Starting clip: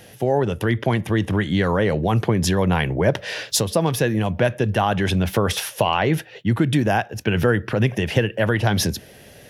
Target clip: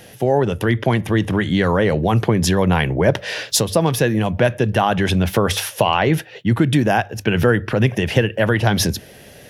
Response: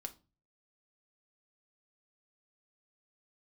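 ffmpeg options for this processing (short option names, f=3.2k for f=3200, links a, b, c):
-af "bandreject=f=50:t=h:w=6,bandreject=f=100:t=h:w=6,volume=3dB"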